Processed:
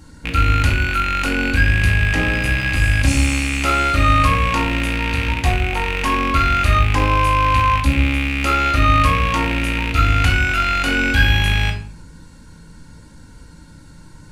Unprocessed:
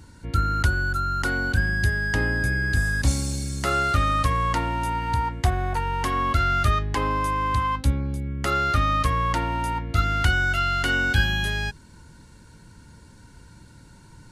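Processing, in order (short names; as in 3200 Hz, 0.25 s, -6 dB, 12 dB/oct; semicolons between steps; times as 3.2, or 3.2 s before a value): rattling part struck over -27 dBFS, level -13 dBFS; in parallel at -7 dB: hard clip -14 dBFS, distortion -18 dB; on the sum: shoebox room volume 620 m³, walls furnished, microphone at 2.2 m; gain -1 dB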